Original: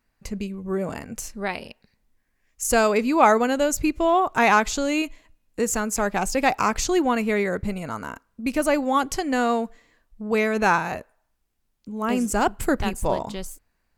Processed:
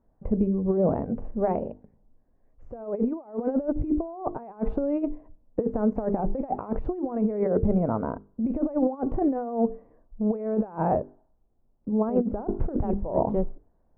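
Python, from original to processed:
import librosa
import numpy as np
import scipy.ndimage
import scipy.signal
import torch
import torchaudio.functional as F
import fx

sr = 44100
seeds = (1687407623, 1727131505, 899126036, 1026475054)

y = fx.hum_notches(x, sr, base_hz=50, count=9)
y = fx.over_compress(y, sr, threshold_db=-27.0, ratio=-0.5)
y = fx.ladder_lowpass(y, sr, hz=850.0, resonance_pct=25)
y = y * librosa.db_to_amplitude(8.5)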